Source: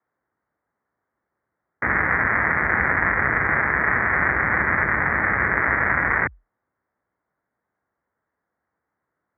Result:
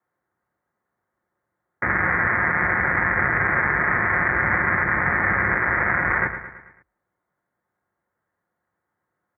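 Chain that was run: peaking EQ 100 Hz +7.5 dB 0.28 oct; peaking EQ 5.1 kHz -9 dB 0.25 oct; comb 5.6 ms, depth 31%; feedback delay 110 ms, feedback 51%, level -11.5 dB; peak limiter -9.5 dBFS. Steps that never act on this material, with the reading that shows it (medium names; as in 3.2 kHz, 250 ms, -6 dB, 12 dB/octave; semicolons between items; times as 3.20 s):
peaking EQ 5.1 kHz: input has nothing above 2.4 kHz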